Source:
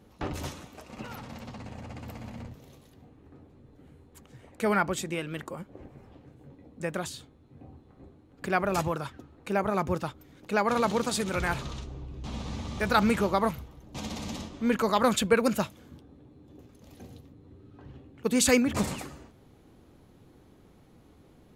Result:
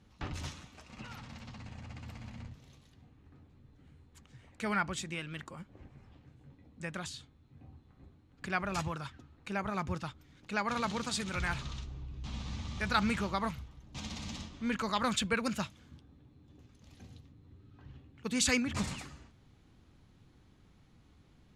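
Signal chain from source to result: low-pass 7 kHz 12 dB/octave; peaking EQ 470 Hz -11.5 dB 2.1 oct; trim -1.5 dB

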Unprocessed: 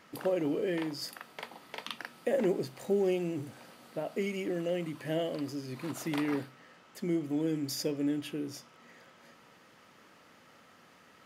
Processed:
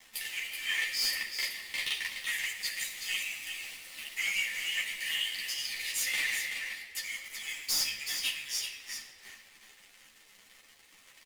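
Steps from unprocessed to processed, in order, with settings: Chebyshev high-pass 1.8 kHz, order 8; waveshaping leveller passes 5; delay 378 ms -7 dB; reverberation RT60 1.3 s, pre-delay 4 ms, DRR 4 dB; three-phase chorus

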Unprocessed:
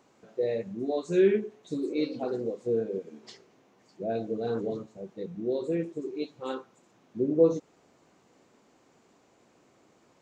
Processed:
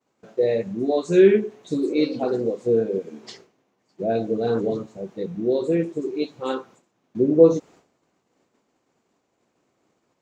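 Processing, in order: expander -52 dBFS; trim +8 dB

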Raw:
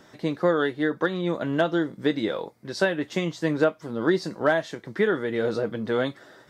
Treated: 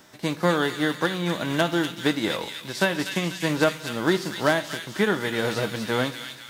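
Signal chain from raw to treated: formants flattened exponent 0.6; feedback echo behind a high-pass 245 ms, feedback 51%, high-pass 2.4 kHz, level -3 dB; on a send at -15.5 dB: reverberation RT60 0.85 s, pre-delay 3 ms

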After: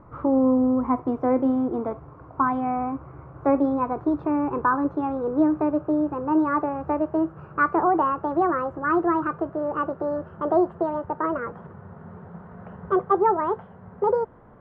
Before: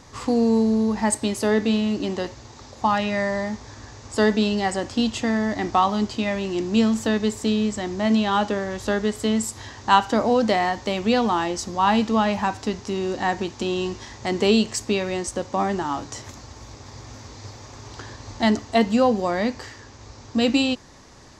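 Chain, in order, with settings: gliding tape speed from 113% -> 180%; Chebyshev low-pass 1.2 kHz, order 3

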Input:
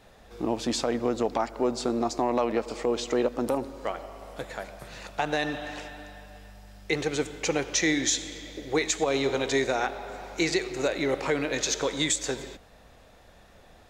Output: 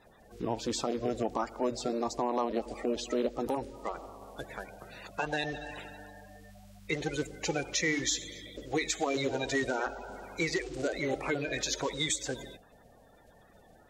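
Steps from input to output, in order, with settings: coarse spectral quantiser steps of 30 dB; trim -4.5 dB

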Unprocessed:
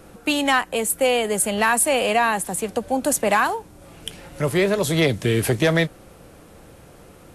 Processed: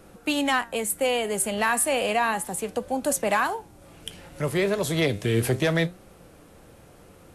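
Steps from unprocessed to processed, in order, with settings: flange 0.33 Hz, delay 4.8 ms, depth 8.5 ms, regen +85%

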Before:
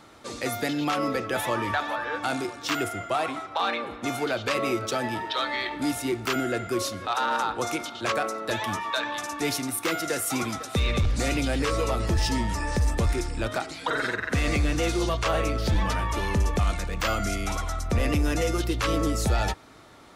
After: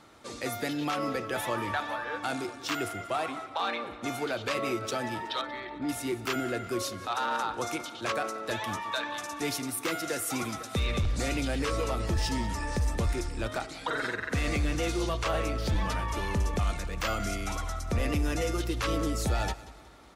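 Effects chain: 5.41–5.89 s: tape spacing loss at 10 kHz 34 dB; feedback delay 185 ms, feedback 44%, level -18 dB; trim -4 dB; MP3 80 kbps 48 kHz

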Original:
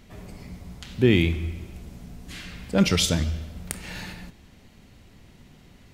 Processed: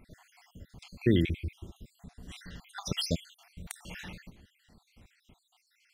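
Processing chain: random holes in the spectrogram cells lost 64%; trim -4.5 dB

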